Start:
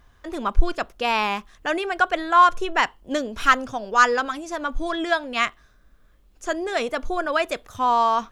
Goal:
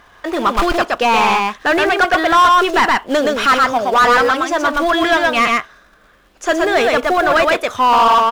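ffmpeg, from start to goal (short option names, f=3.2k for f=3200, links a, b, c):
-filter_complex "[0:a]aecho=1:1:121:0.631,acrusher=bits=5:mode=log:mix=0:aa=0.000001,asplit=2[a][b];[b]highpass=f=720:p=1,volume=26dB,asoftclip=type=tanh:threshold=-1dB[c];[a][c]amix=inputs=2:normalize=0,lowpass=f=2.4k:p=1,volume=-6dB,volume=-2dB"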